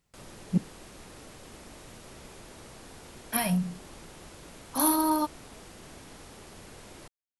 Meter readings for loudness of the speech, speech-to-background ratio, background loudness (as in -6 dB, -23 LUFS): -28.5 LUFS, 19.5 dB, -48.0 LUFS